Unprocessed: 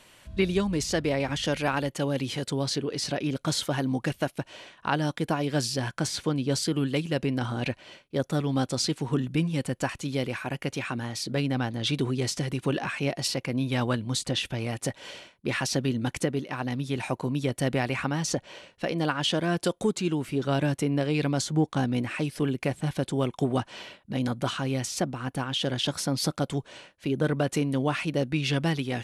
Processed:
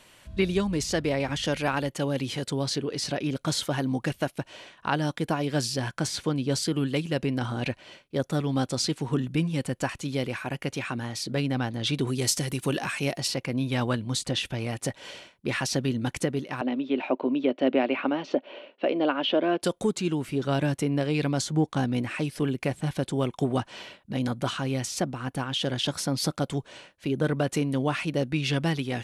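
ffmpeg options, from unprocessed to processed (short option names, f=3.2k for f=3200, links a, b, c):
-filter_complex "[0:a]asettb=1/sr,asplit=3[a][b][c];[a]atrim=end=12.074[d];[b]atrim=start=12.07:end=13.18,asetpts=PTS-STARTPTS,afade=t=in:d=0.004:c=qsin,afade=t=out:st=1.106:d=0.004:c=qsin,aemphasis=mode=production:type=50fm[e];[c]atrim=start=13.176[f];[d][e]acrossfade=d=0.004:c1=hsin:c2=qsin[g];[g][f]acrossfade=d=0.004:c1=qsin:c2=hsin,asettb=1/sr,asplit=3[h][i][j];[h]atrim=end=16.614[k];[i]atrim=start=16.61:end=19.62,asetpts=PTS-STARTPTS,afade=t=in:d=0.004:c=qsin,afade=t=out:st=3.006:d=0.004:c=qsin,highpass=f=250:w=0.5412,highpass=f=250:w=1.3066,equalizer=f=260:t=q:w=4:g=8,equalizer=f=380:t=q:w=4:g=5,equalizer=f=600:t=q:w=4:g=8,equalizer=f=1.8k:t=q:w=4:g=-5,equalizer=f=2.8k:t=q:w=4:g=3,lowpass=f=3.3k:w=0.5412,lowpass=f=3.3k:w=1.3066[l];[j]atrim=start=19.616[m];[k][l]acrossfade=d=0.004:c1=hsin:c2=qsin[n];[n][m]acrossfade=d=0.004:c1=qsin:c2=hsin"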